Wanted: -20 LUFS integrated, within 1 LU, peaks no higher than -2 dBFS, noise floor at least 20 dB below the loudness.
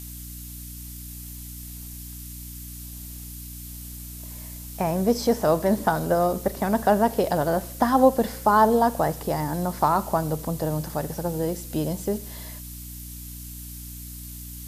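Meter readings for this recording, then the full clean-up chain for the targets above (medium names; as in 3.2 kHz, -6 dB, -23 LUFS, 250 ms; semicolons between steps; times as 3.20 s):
hum 60 Hz; highest harmonic 300 Hz; hum level -37 dBFS; noise floor -38 dBFS; noise floor target -44 dBFS; loudness -23.5 LUFS; peak level -6.0 dBFS; loudness target -20.0 LUFS
-> de-hum 60 Hz, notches 5; noise reduction 6 dB, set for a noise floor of -38 dBFS; trim +3.5 dB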